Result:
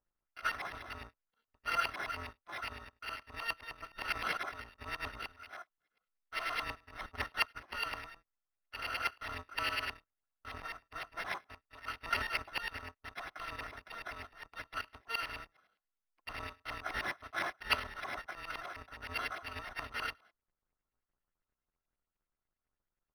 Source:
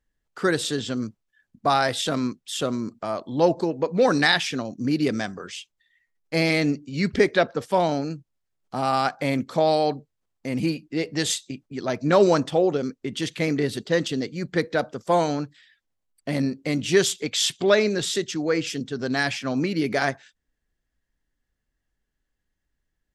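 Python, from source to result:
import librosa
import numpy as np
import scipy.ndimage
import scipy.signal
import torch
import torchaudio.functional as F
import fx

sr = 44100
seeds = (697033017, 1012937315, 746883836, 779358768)

y = fx.bit_reversed(x, sr, seeds[0], block=256)
y = fx.bass_treble(y, sr, bass_db=-6, treble_db=12)
y = fx.filter_lfo_lowpass(y, sr, shape='saw_up', hz=9.7, low_hz=990.0, high_hz=2300.0, q=2.7)
y = np.interp(np.arange(len(y)), np.arange(len(y))[::6], y[::6])
y = y * 10.0 ** (-6.5 / 20.0)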